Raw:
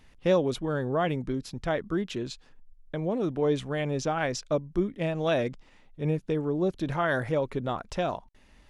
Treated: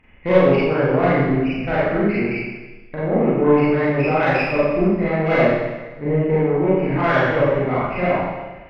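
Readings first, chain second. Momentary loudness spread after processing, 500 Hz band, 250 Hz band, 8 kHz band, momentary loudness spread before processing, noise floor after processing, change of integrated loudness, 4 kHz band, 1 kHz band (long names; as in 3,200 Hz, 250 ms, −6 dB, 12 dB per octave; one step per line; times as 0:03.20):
8 LU, +11.0 dB, +11.0 dB, below −10 dB, 8 LU, −40 dBFS, +10.5 dB, +3.5 dB, +11.0 dB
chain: hearing-aid frequency compression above 1,900 Hz 4 to 1
tube saturation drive 20 dB, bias 0.65
four-comb reverb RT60 1.2 s, combs from 30 ms, DRR −9.5 dB
level +4 dB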